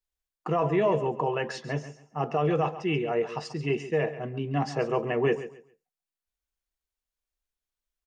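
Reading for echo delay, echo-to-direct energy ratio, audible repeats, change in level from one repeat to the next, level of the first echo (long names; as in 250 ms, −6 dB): 137 ms, −13.5 dB, 2, −13.0 dB, −13.5 dB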